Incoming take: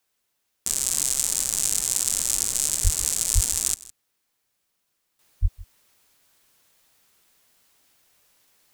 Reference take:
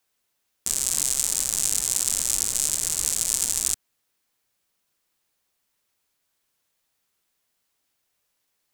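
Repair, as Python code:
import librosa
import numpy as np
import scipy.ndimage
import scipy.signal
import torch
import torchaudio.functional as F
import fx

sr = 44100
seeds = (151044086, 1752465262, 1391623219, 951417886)

y = fx.highpass(x, sr, hz=140.0, slope=24, at=(2.83, 2.95), fade=0.02)
y = fx.highpass(y, sr, hz=140.0, slope=24, at=(3.34, 3.46), fade=0.02)
y = fx.highpass(y, sr, hz=140.0, slope=24, at=(5.41, 5.53), fade=0.02)
y = fx.fix_echo_inverse(y, sr, delay_ms=160, level_db=-20.0)
y = fx.fix_level(y, sr, at_s=5.19, step_db=-12.0)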